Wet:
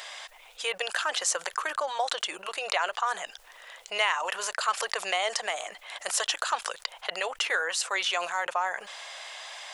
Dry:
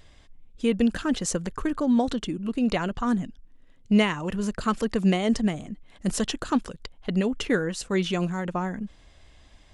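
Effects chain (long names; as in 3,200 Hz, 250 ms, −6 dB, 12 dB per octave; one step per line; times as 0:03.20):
inverse Chebyshev high-pass filter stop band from 260 Hz, stop band 50 dB
envelope flattener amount 50%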